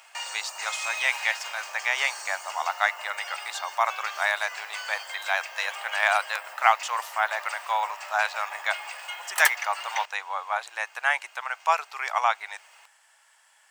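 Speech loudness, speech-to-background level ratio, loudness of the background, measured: -27.5 LUFS, 7.0 dB, -34.5 LUFS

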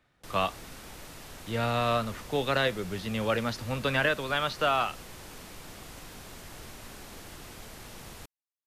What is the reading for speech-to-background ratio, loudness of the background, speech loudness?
16.5 dB, -45.5 LUFS, -29.0 LUFS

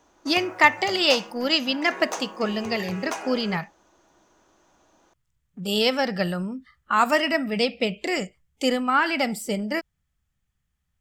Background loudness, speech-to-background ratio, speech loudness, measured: -37.0 LUFS, 13.5 dB, -23.5 LUFS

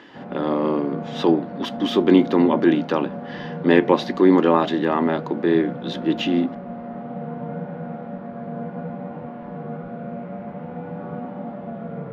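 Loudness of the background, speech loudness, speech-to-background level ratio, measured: -32.5 LUFS, -20.0 LUFS, 12.5 dB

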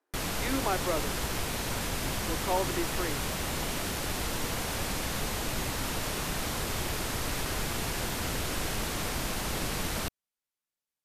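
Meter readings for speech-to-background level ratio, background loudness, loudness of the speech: -2.5 dB, -32.0 LUFS, -34.5 LUFS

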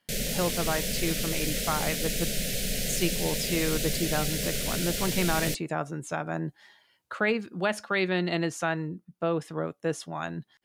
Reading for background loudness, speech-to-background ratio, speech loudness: -29.5 LUFS, -1.5 dB, -31.0 LUFS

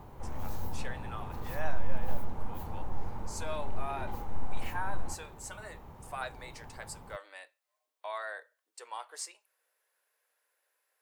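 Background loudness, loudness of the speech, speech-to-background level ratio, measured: -44.0 LUFS, -43.0 LUFS, 1.0 dB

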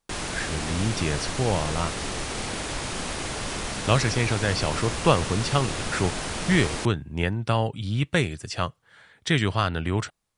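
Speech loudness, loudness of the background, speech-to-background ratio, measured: -26.5 LUFS, -30.5 LUFS, 4.0 dB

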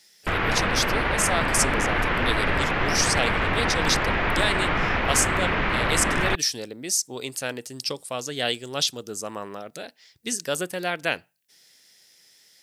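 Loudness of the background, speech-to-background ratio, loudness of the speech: -23.5 LUFS, -3.5 dB, -27.0 LUFS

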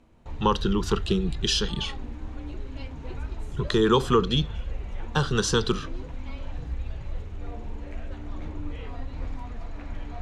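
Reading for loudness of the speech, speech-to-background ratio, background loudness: -25.5 LUFS, 12.0 dB, -37.5 LUFS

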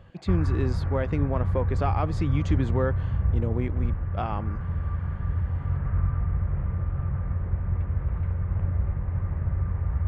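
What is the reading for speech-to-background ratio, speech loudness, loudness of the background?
-2.0 dB, -30.5 LUFS, -28.5 LUFS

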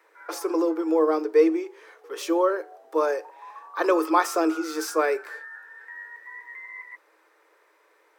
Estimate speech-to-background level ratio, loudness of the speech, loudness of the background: 17.5 dB, -24.5 LUFS, -42.0 LUFS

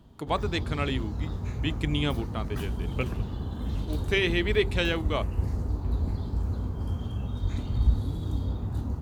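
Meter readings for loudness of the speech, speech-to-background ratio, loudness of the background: -30.0 LUFS, 2.0 dB, -32.0 LUFS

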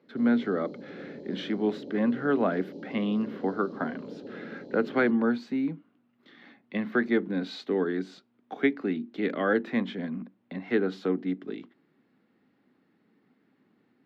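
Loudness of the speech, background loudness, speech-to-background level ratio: -29.0 LUFS, -42.5 LUFS, 13.5 dB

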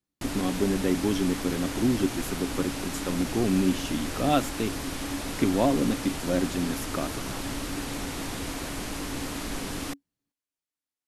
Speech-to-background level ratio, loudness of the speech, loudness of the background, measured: 5.0 dB, -28.5 LUFS, -33.5 LUFS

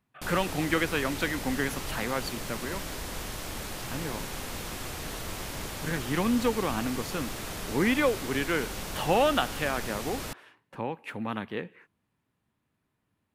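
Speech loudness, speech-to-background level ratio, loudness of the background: -30.5 LUFS, 6.0 dB, -36.5 LUFS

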